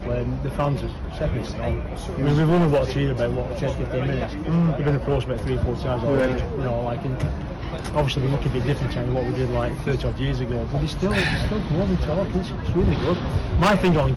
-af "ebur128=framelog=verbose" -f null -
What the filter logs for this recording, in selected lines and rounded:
Integrated loudness:
  I:         -23.5 LUFS
  Threshold: -33.5 LUFS
Loudness range:
  LRA:         2.5 LU
  Threshold: -43.6 LUFS
  LRA low:   -24.7 LUFS
  LRA high:  -22.2 LUFS